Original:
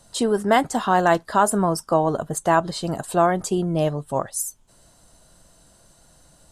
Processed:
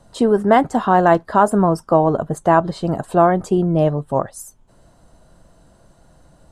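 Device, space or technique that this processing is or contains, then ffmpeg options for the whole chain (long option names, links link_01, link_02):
through cloth: -af "highshelf=frequency=2500:gain=-16,volume=6dB"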